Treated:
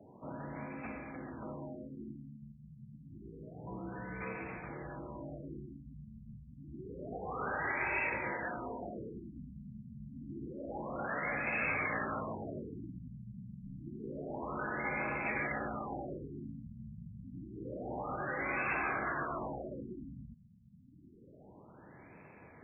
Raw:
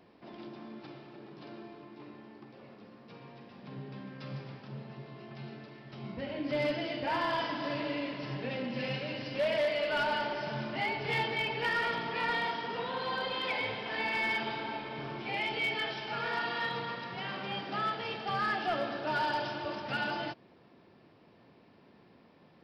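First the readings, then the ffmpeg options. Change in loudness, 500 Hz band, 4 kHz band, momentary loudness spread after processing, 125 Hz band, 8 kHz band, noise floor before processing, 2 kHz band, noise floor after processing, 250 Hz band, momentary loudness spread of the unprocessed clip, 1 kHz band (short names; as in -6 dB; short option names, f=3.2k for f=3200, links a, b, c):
-6.0 dB, -7.0 dB, under -40 dB, 19 LU, -2.0 dB, n/a, -61 dBFS, -3.5 dB, -58 dBFS, -2.5 dB, 19 LU, -6.5 dB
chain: -filter_complex "[0:a]afftfilt=real='re*lt(hypot(re,im),0.0501)':imag='im*lt(hypot(re,im),0.0501)':win_size=1024:overlap=0.75,highshelf=f=2.1k:g=11.5,acrossover=split=140|1000[a][b][c];[a]acrusher=bits=6:mix=0:aa=0.000001[d];[d][b][c]amix=inputs=3:normalize=0,afreqshift=-76,afftfilt=real='re*lt(b*sr/1024,220*pow(2700/220,0.5+0.5*sin(2*PI*0.28*pts/sr)))':imag='im*lt(b*sr/1024,220*pow(2700/220,0.5+0.5*sin(2*PI*0.28*pts/sr)))':win_size=1024:overlap=0.75,volume=4.5dB"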